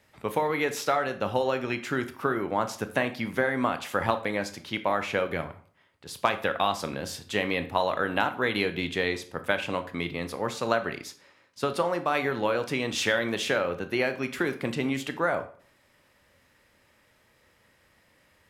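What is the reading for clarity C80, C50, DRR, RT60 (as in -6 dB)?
17.5 dB, 13.5 dB, 9.0 dB, 0.50 s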